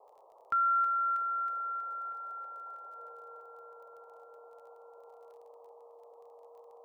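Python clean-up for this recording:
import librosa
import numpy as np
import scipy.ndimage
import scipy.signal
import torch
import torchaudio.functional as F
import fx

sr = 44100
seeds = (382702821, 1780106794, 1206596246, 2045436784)

y = fx.fix_declick_ar(x, sr, threshold=6.5)
y = fx.notch(y, sr, hz=470.0, q=30.0)
y = fx.noise_reduce(y, sr, print_start_s=0.0, print_end_s=0.5, reduce_db=25.0)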